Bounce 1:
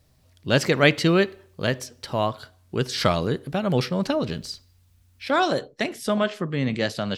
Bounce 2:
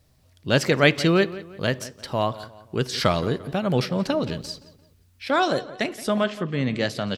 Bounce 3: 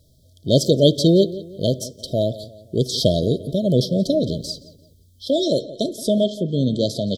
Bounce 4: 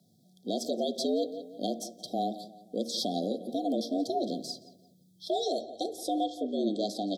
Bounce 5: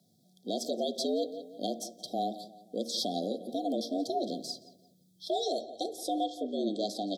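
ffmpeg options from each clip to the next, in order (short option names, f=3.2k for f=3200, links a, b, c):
-filter_complex "[0:a]asplit=2[a][b];[b]adelay=173,lowpass=f=3.6k:p=1,volume=-16.5dB,asplit=2[c][d];[d]adelay=173,lowpass=f=3.6k:p=1,volume=0.41,asplit=2[e][f];[f]adelay=173,lowpass=f=3.6k:p=1,volume=0.41,asplit=2[g][h];[h]adelay=173,lowpass=f=3.6k:p=1,volume=0.41[i];[a][c][e][g][i]amix=inputs=5:normalize=0"
-af "afftfilt=real='re*(1-between(b*sr/4096,680,3100))':imag='im*(1-between(b*sr/4096,680,3100))':win_size=4096:overlap=0.75,volume=5dB"
-af "afreqshift=94,alimiter=limit=-11dB:level=0:latency=1:release=148,bandreject=f=77.94:t=h:w=4,bandreject=f=155.88:t=h:w=4,bandreject=f=233.82:t=h:w=4,bandreject=f=311.76:t=h:w=4,bandreject=f=389.7:t=h:w=4,bandreject=f=467.64:t=h:w=4,bandreject=f=545.58:t=h:w=4,bandreject=f=623.52:t=h:w=4,bandreject=f=701.46:t=h:w=4,bandreject=f=779.4:t=h:w=4,bandreject=f=857.34:t=h:w=4,bandreject=f=935.28:t=h:w=4,bandreject=f=1.01322k:t=h:w=4,bandreject=f=1.09116k:t=h:w=4,bandreject=f=1.1691k:t=h:w=4,bandreject=f=1.24704k:t=h:w=4,bandreject=f=1.32498k:t=h:w=4,bandreject=f=1.40292k:t=h:w=4,bandreject=f=1.48086k:t=h:w=4,bandreject=f=1.5588k:t=h:w=4,bandreject=f=1.63674k:t=h:w=4,bandreject=f=1.71468k:t=h:w=4,bandreject=f=1.79262k:t=h:w=4,bandreject=f=1.87056k:t=h:w=4,bandreject=f=1.9485k:t=h:w=4,bandreject=f=2.02644k:t=h:w=4,bandreject=f=2.10438k:t=h:w=4,bandreject=f=2.18232k:t=h:w=4,bandreject=f=2.26026k:t=h:w=4,bandreject=f=2.3382k:t=h:w=4,bandreject=f=2.41614k:t=h:w=4,volume=-9dB"
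-af "lowshelf=f=340:g=-4.5"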